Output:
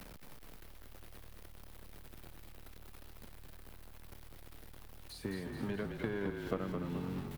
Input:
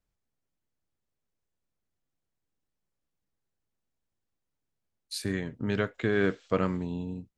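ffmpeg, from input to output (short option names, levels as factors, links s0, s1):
-filter_complex "[0:a]aeval=exprs='val(0)+0.5*0.0133*sgn(val(0))':c=same,equalizer=f=6900:w=1.1:g=-8.5,acrossover=split=140|620[s0][s1][s2];[s0]acompressor=threshold=0.00251:ratio=4[s3];[s1]acompressor=threshold=0.01:ratio=4[s4];[s2]acompressor=threshold=0.00355:ratio=4[s5];[s3][s4][s5]amix=inputs=3:normalize=0,asplit=2[s6][s7];[s7]asoftclip=type=hard:threshold=0.0188,volume=0.316[s8];[s6][s8]amix=inputs=2:normalize=0,aeval=exprs='0.0668*(cos(1*acos(clip(val(0)/0.0668,-1,1)))-cos(1*PI/2))+0.015*(cos(3*acos(clip(val(0)/0.0668,-1,1)))-cos(3*PI/2))':c=same,asplit=2[s9][s10];[s10]asplit=7[s11][s12][s13][s14][s15][s16][s17];[s11]adelay=215,afreqshift=-38,volume=0.562[s18];[s12]adelay=430,afreqshift=-76,volume=0.316[s19];[s13]adelay=645,afreqshift=-114,volume=0.176[s20];[s14]adelay=860,afreqshift=-152,volume=0.0989[s21];[s15]adelay=1075,afreqshift=-190,volume=0.0556[s22];[s16]adelay=1290,afreqshift=-228,volume=0.0309[s23];[s17]adelay=1505,afreqshift=-266,volume=0.0174[s24];[s18][s19][s20][s21][s22][s23][s24]amix=inputs=7:normalize=0[s25];[s9][s25]amix=inputs=2:normalize=0,volume=1.68" -ar 48000 -c:a libvorbis -b:a 128k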